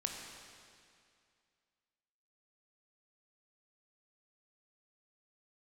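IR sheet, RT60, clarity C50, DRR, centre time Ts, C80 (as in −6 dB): 2.3 s, 2.5 dB, 1.0 dB, 82 ms, 3.5 dB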